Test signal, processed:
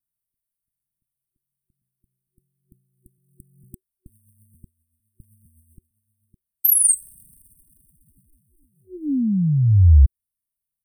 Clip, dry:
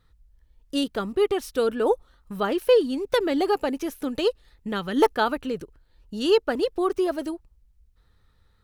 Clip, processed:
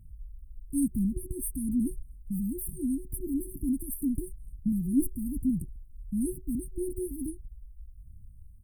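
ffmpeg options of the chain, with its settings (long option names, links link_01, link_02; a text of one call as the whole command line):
ffmpeg -i in.wav -af "aphaser=in_gain=1:out_gain=1:delay=3.3:decay=0.38:speed=1.1:type=triangular,afftfilt=real='re*(1-between(b*sr/4096,370,8200))':imag='im*(1-between(b*sr/4096,370,8200))':win_size=4096:overlap=0.75,aecho=1:1:1.5:0.92,volume=4.5dB" out.wav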